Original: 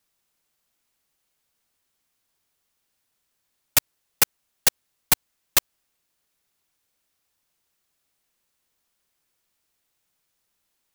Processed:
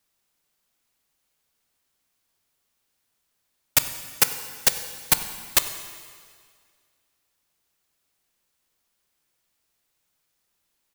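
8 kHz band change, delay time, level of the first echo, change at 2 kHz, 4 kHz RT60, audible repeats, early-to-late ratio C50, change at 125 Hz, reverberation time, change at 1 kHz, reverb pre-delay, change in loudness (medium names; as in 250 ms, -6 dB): +0.5 dB, 96 ms, -20.5 dB, +0.5 dB, 1.9 s, 1, 10.0 dB, +1.0 dB, 2.0 s, +0.5 dB, 6 ms, 0.0 dB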